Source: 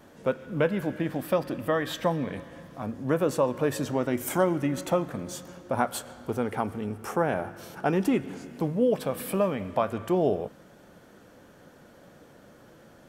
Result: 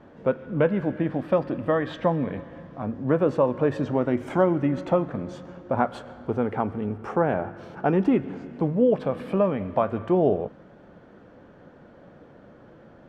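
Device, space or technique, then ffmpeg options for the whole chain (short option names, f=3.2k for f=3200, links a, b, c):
phone in a pocket: -af "lowpass=3.8k,highshelf=f=2.2k:g=-11,volume=4dB"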